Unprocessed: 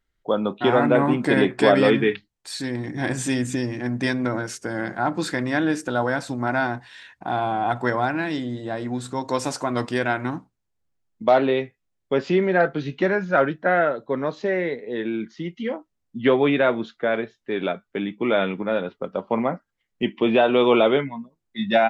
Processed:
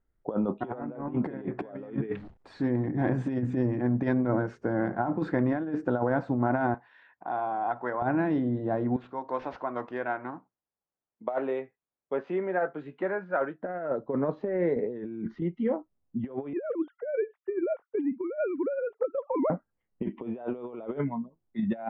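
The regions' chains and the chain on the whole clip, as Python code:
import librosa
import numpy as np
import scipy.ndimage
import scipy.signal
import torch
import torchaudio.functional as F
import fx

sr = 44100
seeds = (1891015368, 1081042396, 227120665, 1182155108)

y = fx.chain(x, sr, fx.zero_step(step_db=-38.0),
    fx.gate_hold(open_db=-35.0, close_db=-41.0, hold_ms=71.0, range_db=-21, attack_ms=1.4, release_ms=100.0), at=(2.09, 2.67))
y = fx.chain(y, sr, fx.highpass(hz=1200.0, slope=6),
    fx.high_shelf(hz=4500.0, db=-6.5), at=(6.74, 8.02))
y = fx.chain(y, sr, fx.highpass(hz=1200.0, slope=6),
    fx.resample_linear(factor=4), at=(8.96, 13.63))
y = fx.chain(y, sr, fx.over_compress(threshold_db=-37.0, ratio=-1.0),
    fx.low_shelf(hz=210.0, db=7.5), at=(14.76, 15.42))
y = fx.chain(y, sr, fx.sine_speech(),
    fx.band_squash(depth_pct=40), at=(16.53, 19.5))
y = scipy.signal.sosfilt(scipy.signal.butter(2, 1000.0, 'lowpass', fs=sr, output='sos'), y)
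y = fx.over_compress(y, sr, threshold_db=-25.0, ratio=-0.5)
y = y * librosa.db_to_amplitude(-2.5)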